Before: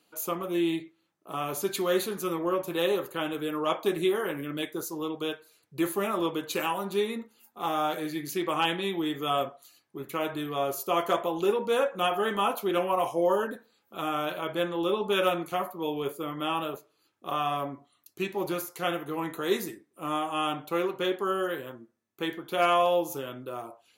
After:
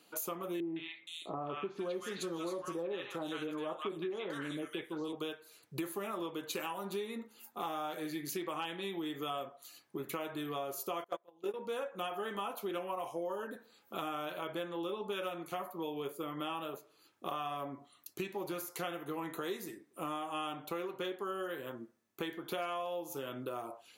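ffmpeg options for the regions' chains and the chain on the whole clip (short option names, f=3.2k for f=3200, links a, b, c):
-filter_complex "[0:a]asettb=1/sr,asplit=3[a][b][c];[a]atrim=end=0.604[d];[b]atrim=start=0.6:end=5.13,asetpts=PTS-STARTPTS,afade=t=in:d=0.004:c=qsin,afade=t=out:st=4.526:d=0.004:c=qsin,lowpass=7.2k,acrossover=split=1100|3800[e][f][g];[f]adelay=160[h];[g]adelay=470[i];[e][h][i]amix=inputs=3:normalize=0,atrim=end_sample=199773[j];[c]atrim=start=5.126[k];[d][j]acrossfade=d=0.004:c1=hsin:c2=qsin[l];[l][k]acrossfade=d=0.004:c1=qsin:c2=hsin,asettb=1/sr,asplit=3[m][n][o];[m]atrim=end=11.044[p];[n]atrim=start=11.04:end=11.54,asetpts=PTS-STARTPTS,afade=t=in:d=0.004:c=qsin,afade=t=out:st=0.496:d=0.004:c=qsin,agate=range=-31dB:threshold=-24dB:ratio=16:release=100:detection=peak,equalizer=f=510:w=1.3:g=4.5[q];[o]atrim=start=11.536[r];[p][q]acrossfade=d=0.004:c1=hsin:c2=qsin[s];[s][r]acrossfade=d=0.004:c1=qsin:c2=hsin,lowshelf=f=81:g=-9,acompressor=threshold=-41dB:ratio=6,volume=4dB"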